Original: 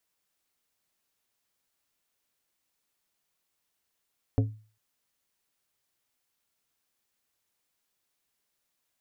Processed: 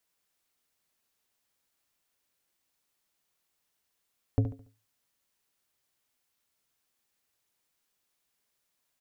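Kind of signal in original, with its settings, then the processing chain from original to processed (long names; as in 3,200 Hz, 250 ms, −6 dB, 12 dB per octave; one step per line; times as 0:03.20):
struck glass plate, length 0.40 s, lowest mode 108 Hz, decay 0.39 s, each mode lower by 5 dB, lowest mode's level −18 dB
on a send: repeating echo 71 ms, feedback 35%, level −9.5 dB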